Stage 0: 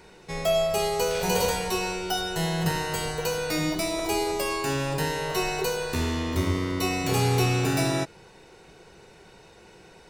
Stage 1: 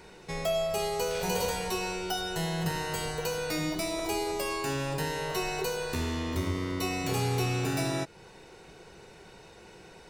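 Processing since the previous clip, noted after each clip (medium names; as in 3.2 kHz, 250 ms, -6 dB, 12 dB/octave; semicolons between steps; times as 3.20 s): compression 1.5:1, threshold -36 dBFS, peak gain reduction 6.5 dB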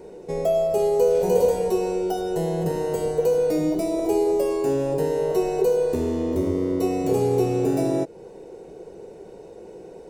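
FFT filter 120 Hz 0 dB, 480 Hz +14 dB, 1.3 kHz -8 dB, 4.1 kHz -10 dB, 7.2 kHz -3 dB; trim +1 dB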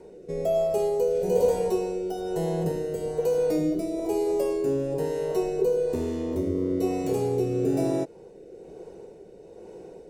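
rotary cabinet horn 1.1 Hz; trim -2 dB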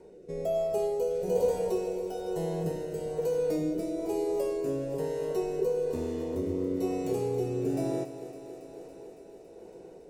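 thinning echo 279 ms, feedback 77%, high-pass 160 Hz, level -12 dB; trim -5 dB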